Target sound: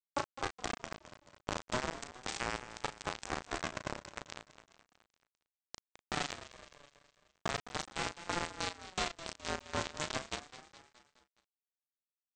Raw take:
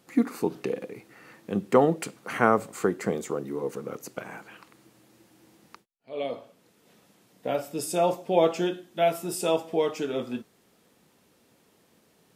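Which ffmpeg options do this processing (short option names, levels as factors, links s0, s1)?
-filter_complex "[0:a]aemphasis=mode=production:type=75kf,agate=range=0.0224:threshold=0.00631:ratio=3:detection=peak,equalizer=f=1600:t=o:w=0.7:g=-3,acompressor=threshold=0.0141:ratio=12,aresample=16000,acrusher=bits=3:dc=4:mix=0:aa=0.000001,aresample=44100,asplit=2[s0][s1];[s1]adelay=36,volume=0.355[s2];[s0][s2]amix=inputs=2:normalize=0,asplit=2[s3][s4];[s4]aecho=0:1:210|420|630|840|1050:0.2|0.108|0.0582|0.0314|0.017[s5];[s3][s5]amix=inputs=2:normalize=0,aeval=exprs='val(0)*sin(2*PI*720*n/s+720*0.2/0.36*sin(2*PI*0.36*n/s))':c=same,volume=2.37"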